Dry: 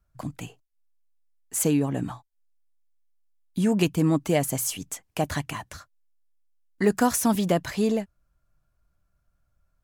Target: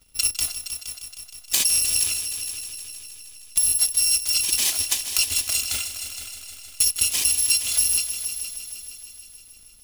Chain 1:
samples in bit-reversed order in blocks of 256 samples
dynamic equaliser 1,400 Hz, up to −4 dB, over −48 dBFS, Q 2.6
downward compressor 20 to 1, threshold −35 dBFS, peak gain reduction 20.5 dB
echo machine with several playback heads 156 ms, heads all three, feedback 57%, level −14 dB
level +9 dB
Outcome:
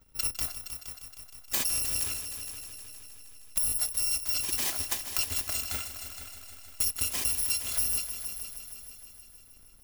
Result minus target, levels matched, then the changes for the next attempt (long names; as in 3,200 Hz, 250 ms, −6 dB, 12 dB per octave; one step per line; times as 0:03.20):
4,000 Hz band −2.5 dB
add after downward compressor: flat-topped bell 5,300 Hz +11 dB 2.6 octaves